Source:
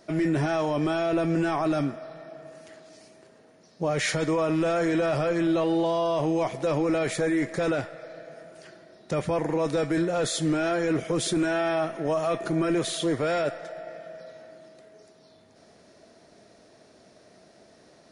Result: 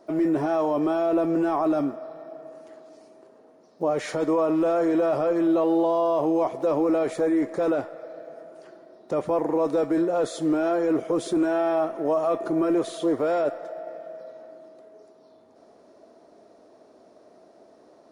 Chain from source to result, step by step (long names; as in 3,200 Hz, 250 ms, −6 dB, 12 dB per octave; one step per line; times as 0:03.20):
one scale factor per block 7 bits
flat-topped bell 550 Hz +12 dB 2.7 octaves
level −9 dB